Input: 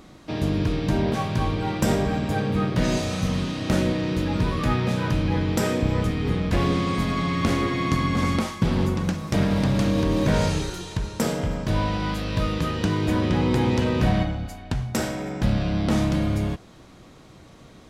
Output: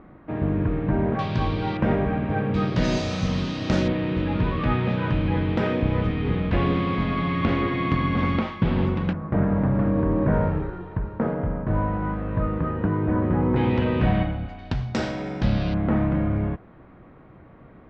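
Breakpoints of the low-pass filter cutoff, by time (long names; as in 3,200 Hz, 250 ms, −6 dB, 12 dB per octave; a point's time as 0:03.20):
low-pass filter 24 dB per octave
1,900 Hz
from 0:01.19 4,600 Hz
from 0:01.77 2,400 Hz
from 0:02.54 5,800 Hz
from 0:03.88 3,200 Hz
from 0:09.13 1,600 Hz
from 0:13.56 3,000 Hz
from 0:14.59 5,000 Hz
from 0:15.74 2,000 Hz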